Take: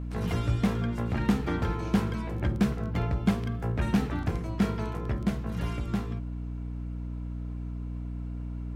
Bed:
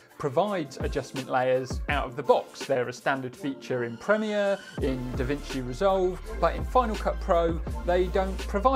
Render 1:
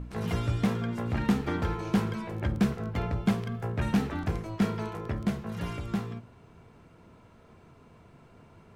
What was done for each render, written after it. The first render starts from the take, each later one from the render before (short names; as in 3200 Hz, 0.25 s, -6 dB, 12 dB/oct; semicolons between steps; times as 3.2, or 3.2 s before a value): de-hum 60 Hz, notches 6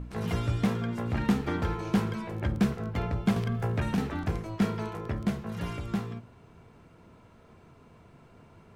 3.36–3.98 three-band squash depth 100%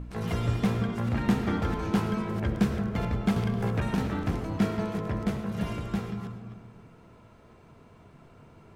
reverse delay 0.218 s, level -10 dB; digital reverb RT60 1.4 s, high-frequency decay 0.3×, pre-delay 60 ms, DRR 7 dB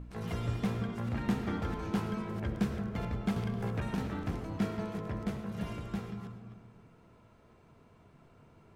gain -6.5 dB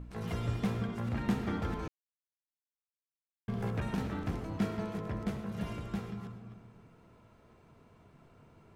1.88–3.48 mute